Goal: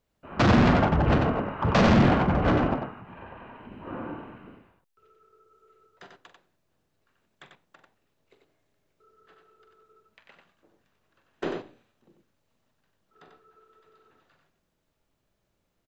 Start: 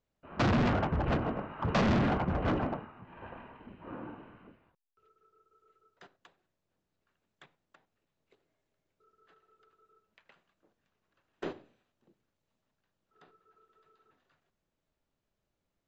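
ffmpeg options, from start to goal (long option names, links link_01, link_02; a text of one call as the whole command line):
ffmpeg -i in.wav -filter_complex "[0:a]aecho=1:1:43.73|93.29:0.282|0.562,asettb=1/sr,asplit=3[link_01][link_02][link_03];[link_01]atrim=end=2.974[link_04];[link_02]atrim=start=2.97:end=3.72,asetpts=PTS-STARTPTS,afade=type=in:duration=0.004:curve=qsin,afade=type=out:start_time=0.746:duration=0.004:curve=qsin,acompressor=threshold=-47dB:ratio=6[link_05];[link_03]atrim=start=3.716[link_06];[link_04][link_05]acrossfade=duration=0.004:curve1=hsin:curve2=qsin[link_07];[link_07][link_06]acrossfade=duration=0.004:curve1=qsin:curve2=hsin,volume=6.5dB" out.wav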